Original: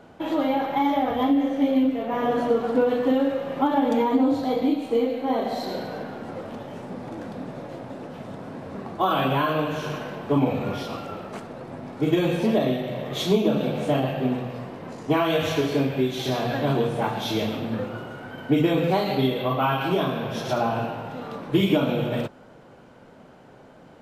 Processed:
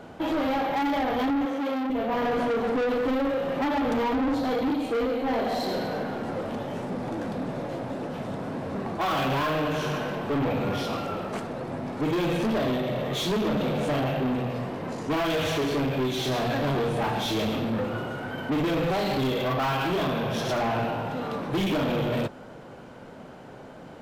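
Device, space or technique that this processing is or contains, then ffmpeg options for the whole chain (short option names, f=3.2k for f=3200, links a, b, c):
saturation between pre-emphasis and de-emphasis: -filter_complex "[0:a]highshelf=f=5.6k:g=10,asoftclip=type=tanh:threshold=-28dB,highshelf=f=5.6k:g=-10,asettb=1/sr,asplit=3[a][b][c];[a]atrim=end=1.454[d];[b]atrim=start=1.45:end=1.9,asetpts=PTS-STARTPTS,afade=t=in:d=0.004:c=qsin,afade=t=out:st=0.446:d=0.004:c=qsin,highpass=f=340:p=1[e];[c]atrim=start=1.896[f];[d][e]acrossfade=d=0.004:c1=hsin:c2=qsin[g];[g][f]acrossfade=d=0.004:c1=qsin:c2=hsin,volume=5dB"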